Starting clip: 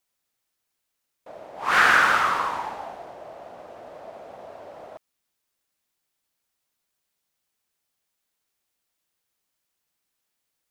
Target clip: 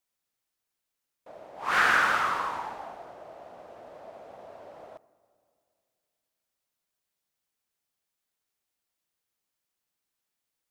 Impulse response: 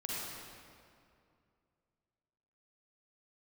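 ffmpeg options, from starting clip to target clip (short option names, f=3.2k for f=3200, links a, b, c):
-filter_complex "[0:a]asplit=2[a][b];[1:a]atrim=start_sample=2205,lowpass=2.1k[c];[b][c]afir=irnorm=-1:irlink=0,volume=-19dB[d];[a][d]amix=inputs=2:normalize=0,volume=-5.5dB"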